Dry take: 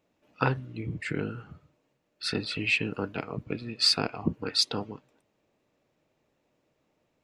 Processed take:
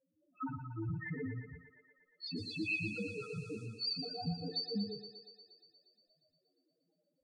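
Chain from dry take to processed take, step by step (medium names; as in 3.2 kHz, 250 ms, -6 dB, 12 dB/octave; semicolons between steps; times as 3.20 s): peak limiter -20 dBFS, peak gain reduction 10.5 dB; chorus voices 6, 0.41 Hz, delay 15 ms, depth 4.2 ms; loudest bins only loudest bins 2; 2.36–3.65 s: band noise 4.1–9.4 kHz -72 dBFS; thinning echo 118 ms, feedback 75%, high-pass 350 Hz, level -7.5 dB; reverberation RT60 0.45 s, pre-delay 3 ms, DRR 12 dB; trim +3.5 dB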